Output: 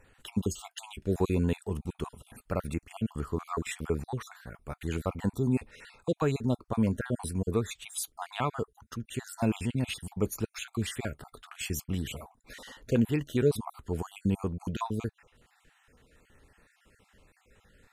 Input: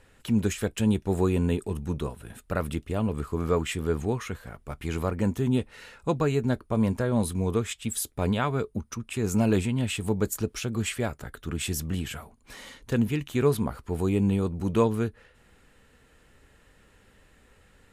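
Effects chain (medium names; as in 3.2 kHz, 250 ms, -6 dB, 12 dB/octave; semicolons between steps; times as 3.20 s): random holes in the spectrogram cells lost 39%; 12.07–13.37 s: peaking EQ 670 Hz +5 dB 1.9 oct; trim -2 dB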